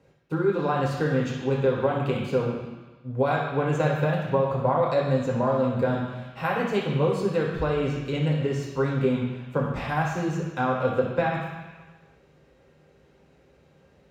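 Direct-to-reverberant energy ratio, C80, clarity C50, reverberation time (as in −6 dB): −2.5 dB, 5.5 dB, 3.0 dB, 1.3 s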